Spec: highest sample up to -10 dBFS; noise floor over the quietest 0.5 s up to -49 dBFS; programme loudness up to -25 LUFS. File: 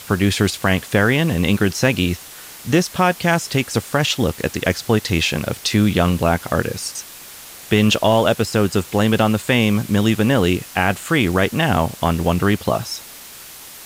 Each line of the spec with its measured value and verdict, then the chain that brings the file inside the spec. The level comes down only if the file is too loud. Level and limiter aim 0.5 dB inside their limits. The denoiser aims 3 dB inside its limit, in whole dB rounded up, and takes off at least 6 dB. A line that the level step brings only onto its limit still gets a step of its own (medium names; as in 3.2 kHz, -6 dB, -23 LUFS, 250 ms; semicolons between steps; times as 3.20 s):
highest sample -3.0 dBFS: fail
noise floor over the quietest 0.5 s -38 dBFS: fail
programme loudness -18.0 LUFS: fail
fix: noise reduction 7 dB, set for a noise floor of -38 dBFS; trim -7.5 dB